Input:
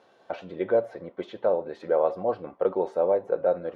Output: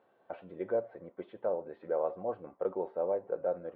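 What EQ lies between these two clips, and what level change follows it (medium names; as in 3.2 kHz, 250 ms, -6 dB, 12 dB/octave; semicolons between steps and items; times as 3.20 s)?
Gaussian low-pass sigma 3.1 samples; -8.5 dB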